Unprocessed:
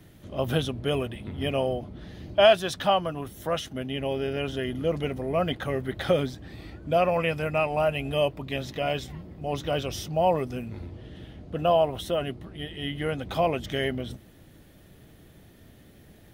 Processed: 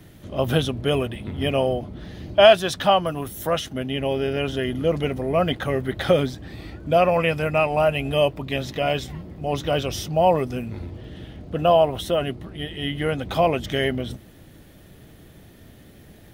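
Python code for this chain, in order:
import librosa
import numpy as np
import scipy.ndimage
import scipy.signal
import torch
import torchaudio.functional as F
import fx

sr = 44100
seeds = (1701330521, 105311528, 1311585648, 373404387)

y = fx.high_shelf(x, sr, hz=8000.0, db=9.5, at=(3.06, 3.5))
y = fx.dmg_crackle(y, sr, seeds[0], per_s=90.0, level_db=-57.0)
y = y * librosa.db_to_amplitude(5.0)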